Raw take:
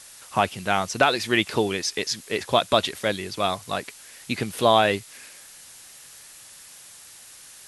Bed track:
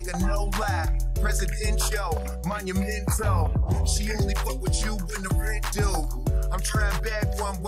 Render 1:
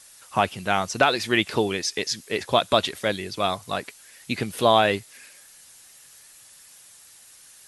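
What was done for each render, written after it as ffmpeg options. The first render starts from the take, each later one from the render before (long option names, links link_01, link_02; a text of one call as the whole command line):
ffmpeg -i in.wav -af "afftdn=noise_reduction=6:noise_floor=-47" out.wav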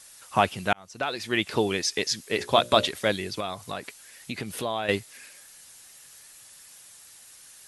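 ffmpeg -i in.wav -filter_complex "[0:a]asettb=1/sr,asplit=3[link_01][link_02][link_03];[link_01]atrim=end=2.354[link_04];[link_02]atrim=start=2.35:end=2.88,asetpts=PTS-STARTPTS,afade=type=in:duration=0.004:curve=qsin,afade=type=out:start_time=0.526:duration=0.004:curve=qsin,bandreject=frequency=60:width_type=h:width=6,bandreject=frequency=120:width_type=h:width=6,bandreject=frequency=180:width_type=h:width=6,bandreject=frequency=240:width_type=h:width=6,bandreject=frequency=300:width_type=h:width=6,bandreject=frequency=360:width_type=h:width=6,bandreject=frequency=420:width_type=h:width=6,bandreject=frequency=480:width_type=h:width=6,bandreject=frequency=540:width_type=h:width=6,bandreject=frequency=600:width_type=h:width=6[link_05];[link_03]atrim=start=2.876[link_06];[link_04][link_05]acrossfade=duration=0.004:curve1=hsin:curve2=qsin[link_07];[link_07][link_06]acrossfade=duration=0.004:curve1=qsin:curve2=hsin,asettb=1/sr,asplit=3[link_08][link_09][link_10];[link_08]atrim=end=3.404[link_11];[link_09]atrim=start=3.4:end=4.89,asetpts=PTS-STARTPTS,afade=type=in:duration=0.004:curve=qsin,afade=type=out:start_time=1.486:duration=0.004:curve=qsin,acompressor=threshold=-31dB:ratio=2.5:attack=3.2:release=140:knee=1:detection=peak[link_12];[link_10]atrim=start=4.886[link_13];[link_11][link_12]acrossfade=duration=0.004:curve1=hsin:curve2=qsin[link_14];[link_14][link_13]acrossfade=duration=0.004:curve1=qsin:curve2=hsin,asplit=2[link_15][link_16];[link_15]atrim=end=0.73,asetpts=PTS-STARTPTS,afade=type=out:start_time=0.726:duration=0.004:curve=hsin[link_17];[link_16]atrim=start=0.73,asetpts=PTS-STARTPTS,afade=type=in:duration=1.05[link_18];[link_17][link_18]concat=n=2:v=0:a=1" out.wav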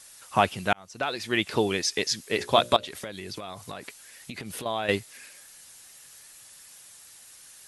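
ffmpeg -i in.wav -filter_complex "[0:a]asettb=1/sr,asplit=3[link_01][link_02][link_03];[link_01]atrim=end=2.764[link_04];[link_02]atrim=start=2.76:end=4.66,asetpts=PTS-STARTPTS,afade=type=in:duration=0.004:curve=qsin,afade=type=out:start_time=1.896:duration=0.004:curve=qsin,acompressor=threshold=-32dB:ratio=12:attack=3.2:release=140:knee=1:detection=peak[link_05];[link_03]atrim=start=4.656[link_06];[link_04][link_05]acrossfade=duration=0.004:curve1=hsin:curve2=qsin[link_07];[link_07][link_06]acrossfade=duration=0.004:curve1=qsin:curve2=hsin" out.wav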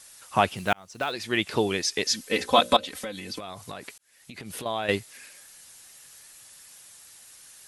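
ffmpeg -i in.wav -filter_complex "[0:a]asplit=3[link_01][link_02][link_03];[link_01]afade=type=out:start_time=0.56:duration=0.02[link_04];[link_02]acrusher=bits=6:mode=log:mix=0:aa=0.000001,afade=type=in:start_time=0.56:duration=0.02,afade=type=out:start_time=1.11:duration=0.02[link_05];[link_03]afade=type=in:start_time=1.11:duration=0.02[link_06];[link_04][link_05][link_06]amix=inputs=3:normalize=0,asettb=1/sr,asplit=3[link_07][link_08][link_09];[link_07]atrim=end=2.054[link_10];[link_08]atrim=start=2.05:end=3.39,asetpts=PTS-STARTPTS,afade=type=in:duration=0.004:curve=qsin,afade=type=out:start_time=1.336:duration=0.004:curve=qsin,aecho=1:1:3.9:0.84,atrim=end_sample=59094[link_11];[link_09]atrim=start=3.386[link_12];[link_10][link_11]acrossfade=duration=0.004:curve1=hsin:curve2=qsin[link_13];[link_13][link_12]acrossfade=duration=0.004:curve1=qsin:curve2=hsin,asplit=2[link_14][link_15];[link_14]atrim=end=3.98,asetpts=PTS-STARTPTS,afade=type=out:start_time=3.976:duration=0.004:curve=hsin[link_16];[link_15]atrim=start=3.98,asetpts=PTS-STARTPTS,afade=type=in:duration=0.58[link_17];[link_16][link_17]concat=n=2:v=0:a=1" out.wav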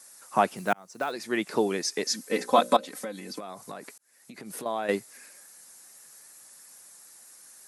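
ffmpeg -i in.wav -af "highpass=frequency=170:width=0.5412,highpass=frequency=170:width=1.3066,equalizer=frequency=3100:width_type=o:width=0.98:gain=-11.5" out.wav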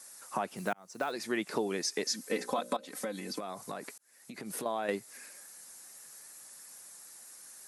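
ffmpeg -i in.wav -af "alimiter=limit=-15.5dB:level=0:latency=1:release=270,acompressor=threshold=-32dB:ratio=2" out.wav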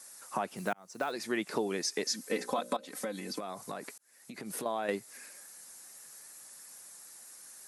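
ffmpeg -i in.wav -af anull out.wav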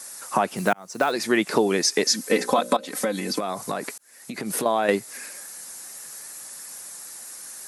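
ffmpeg -i in.wav -af "volume=12dB" out.wav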